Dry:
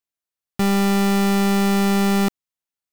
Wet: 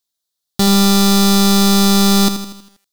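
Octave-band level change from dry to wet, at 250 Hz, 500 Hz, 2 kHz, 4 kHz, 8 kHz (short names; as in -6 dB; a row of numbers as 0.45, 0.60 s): +5.5, +3.5, +1.5, +14.0, +14.0 dB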